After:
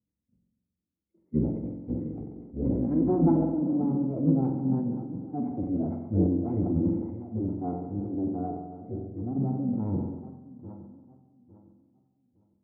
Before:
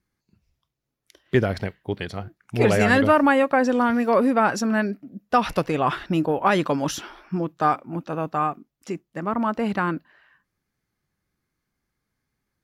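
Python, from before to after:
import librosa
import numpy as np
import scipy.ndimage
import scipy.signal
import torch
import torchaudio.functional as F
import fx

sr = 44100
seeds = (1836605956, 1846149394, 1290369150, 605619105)

p1 = fx.reverse_delay_fb(x, sr, ms=429, feedback_pct=50, wet_db=-14.0)
p2 = fx.formant_cascade(p1, sr, vowel='u')
p3 = fx.echo_thinned(p2, sr, ms=196, feedback_pct=46, hz=390.0, wet_db=-17)
p4 = fx.rider(p3, sr, range_db=4, speed_s=2.0)
p5 = p3 + (p4 * librosa.db_to_amplitude(0.0))
p6 = fx.transient(p5, sr, attack_db=-4, sustain_db=1)
p7 = scipy.signal.sosfilt(scipy.signal.butter(4, 120.0, 'highpass', fs=sr, output='sos'), p6)
p8 = fx.low_shelf(p7, sr, hz=250.0, db=2.5)
p9 = fx.pitch_keep_formants(p8, sr, semitones=-9.0)
p10 = fx.peak_eq(p9, sr, hz=1100.0, db=-12.5, octaves=2.9)
p11 = fx.rev_spring(p10, sr, rt60_s=1.2, pass_ms=(45,), chirp_ms=30, drr_db=5.0)
y = fx.sustainer(p11, sr, db_per_s=56.0)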